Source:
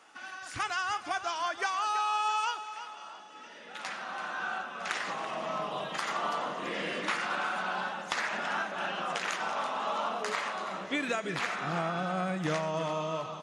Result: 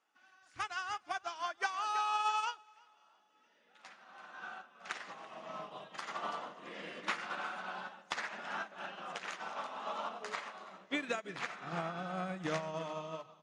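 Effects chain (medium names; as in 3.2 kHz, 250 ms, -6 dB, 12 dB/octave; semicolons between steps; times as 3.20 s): low-pass 8.4 kHz 12 dB/octave; hum notches 50/100/150 Hz; upward expansion 2.5:1, over -41 dBFS; trim -1.5 dB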